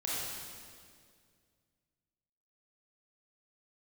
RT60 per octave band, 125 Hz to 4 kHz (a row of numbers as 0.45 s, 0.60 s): 2.8 s, 2.5 s, 2.3 s, 1.9 s, 1.8 s, 1.8 s